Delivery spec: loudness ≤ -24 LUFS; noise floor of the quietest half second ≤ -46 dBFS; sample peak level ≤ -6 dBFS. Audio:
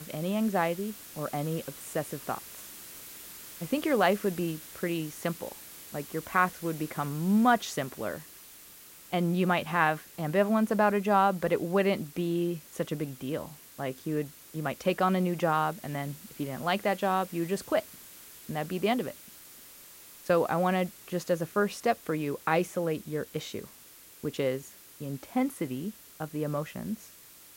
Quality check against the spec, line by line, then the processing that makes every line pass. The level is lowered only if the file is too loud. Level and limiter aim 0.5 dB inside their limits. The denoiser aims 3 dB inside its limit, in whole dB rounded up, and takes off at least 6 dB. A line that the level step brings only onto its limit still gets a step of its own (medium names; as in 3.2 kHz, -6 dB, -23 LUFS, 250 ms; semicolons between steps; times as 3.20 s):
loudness -30.0 LUFS: pass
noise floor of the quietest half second -53 dBFS: pass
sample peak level -9.5 dBFS: pass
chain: none needed